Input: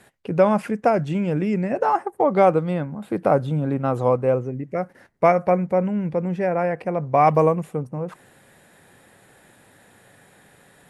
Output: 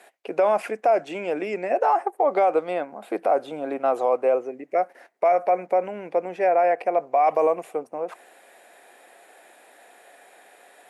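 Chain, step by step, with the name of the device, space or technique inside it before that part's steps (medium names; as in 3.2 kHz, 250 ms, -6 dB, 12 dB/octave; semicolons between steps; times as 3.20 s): laptop speaker (high-pass 340 Hz 24 dB/octave; peaking EQ 700 Hz +10 dB 0.34 oct; peaking EQ 2.4 kHz +5 dB 0.36 oct; peak limiter -11.5 dBFS, peak gain reduction 12.5 dB)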